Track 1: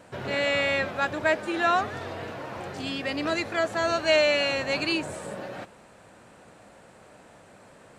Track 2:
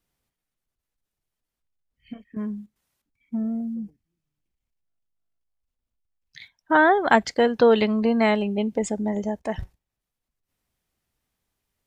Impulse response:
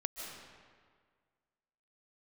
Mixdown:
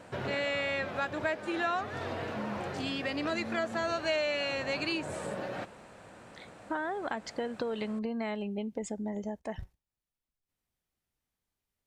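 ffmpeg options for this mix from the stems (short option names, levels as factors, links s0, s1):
-filter_complex "[0:a]highshelf=f=8400:g=-6.5,volume=1.06[s0];[1:a]acompressor=threshold=0.112:ratio=6,volume=0.376[s1];[s0][s1]amix=inputs=2:normalize=0,acompressor=threshold=0.0251:ratio=2.5"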